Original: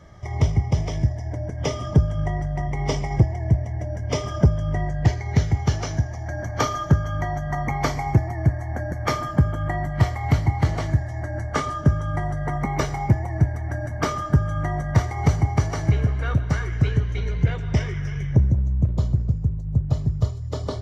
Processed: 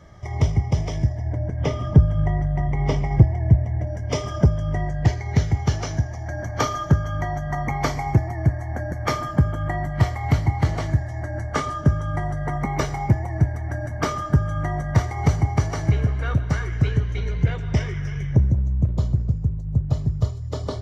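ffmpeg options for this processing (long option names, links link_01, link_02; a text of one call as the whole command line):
ffmpeg -i in.wav -filter_complex "[0:a]asettb=1/sr,asplit=3[link_01][link_02][link_03];[link_01]atrim=end=1.184[link_04];[link_02]atrim=start=1.18:end=3.87,asetpts=PTS-STARTPTS,afade=type=in:duration=0.004:curve=qsin,afade=type=out:start_time=2.686:duration=0.004:curve=qsin,bass=frequency=250:gain=4,treble=frequency=4000:gain=-10[link_05];[link_03]atrim=start=3.866[link_06];[link_04][link_05]acrossfade=duration=0.004:curve1=hsin:curve2=qsin[link_07];[link_07][link_06]acrossfade=duration=0.004:curve1=qsin:curve2=hsin" out.wav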